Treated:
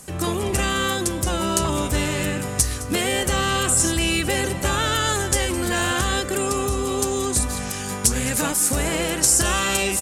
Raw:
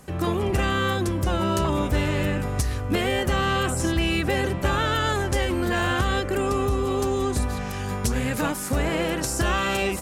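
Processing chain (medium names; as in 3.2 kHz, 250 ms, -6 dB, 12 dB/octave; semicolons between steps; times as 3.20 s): peaking EQ 8.7 kHz +15 dB 1.7 oct; hum notches 50/100 Hz; on a send: multi-tap echo 211/215 ms -19.5/-18.5 dB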